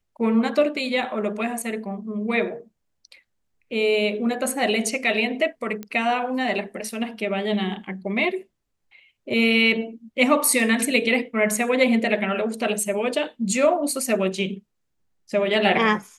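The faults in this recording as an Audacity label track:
5.830000	5.830000	pop -18 dBFS

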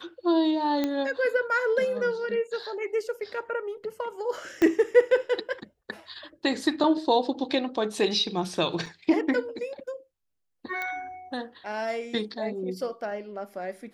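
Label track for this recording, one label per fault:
0.840000	0.840000	pop -14 dBFS
4.620000	4.620000	pop -12 dBFS
8.860000	8.860000	gap 4 ms
10.820000	10.820000	pop -19 dBFS

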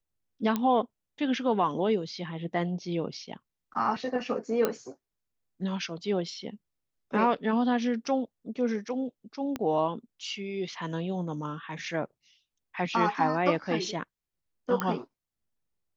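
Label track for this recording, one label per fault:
0.560000	0.560000	pop -15 dBFS
4.650000	4.650000	pop -12 dBFS
9.560000	9.560000	pop -18 dBFS
14.800000	14.800000	pop -14 dBFS

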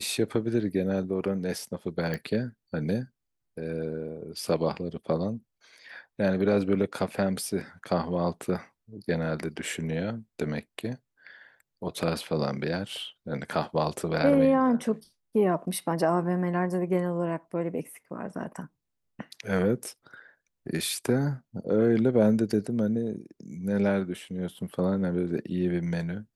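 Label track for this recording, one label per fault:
2.140000	2.140000	pop -18 dBFS

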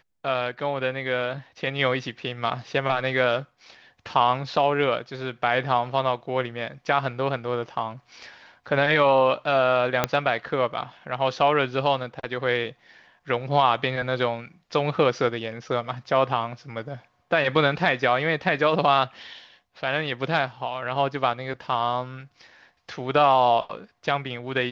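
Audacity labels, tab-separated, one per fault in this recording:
10.040000	10.040000	pop -5 dBFS

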